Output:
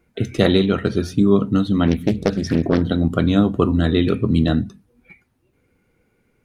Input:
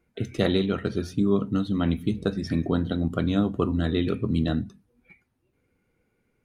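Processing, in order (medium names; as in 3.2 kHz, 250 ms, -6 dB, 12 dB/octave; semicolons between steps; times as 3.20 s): 1.87–2.82 s: loudspeaker Doppler distortion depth 0.5 ms; trim +7.5 dB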